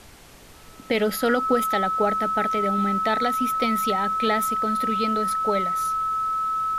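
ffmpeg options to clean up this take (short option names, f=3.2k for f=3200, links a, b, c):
-af "bandreject=f=1.3k:w=30,afftdn=nr=24:nf=-46"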